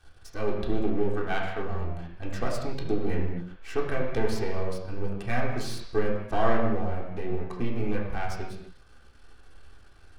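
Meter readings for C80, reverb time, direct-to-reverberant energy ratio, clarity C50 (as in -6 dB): 5.5 dB, no single decay rate, -3.5 dB, 3.5 dB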